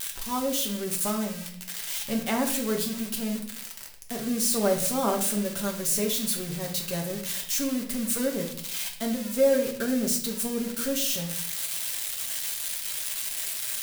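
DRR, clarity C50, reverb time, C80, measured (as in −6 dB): 0.0 dB, 8.0 dB, 0.60 s, 11.5 dB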